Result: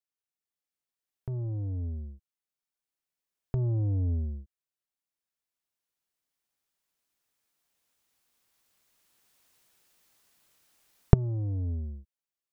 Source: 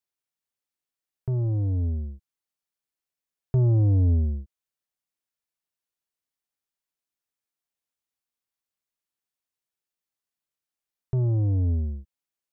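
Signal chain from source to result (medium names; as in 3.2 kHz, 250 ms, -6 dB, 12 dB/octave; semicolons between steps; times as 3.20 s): recorder AGC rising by 5.8 dB/s; trim -8 dB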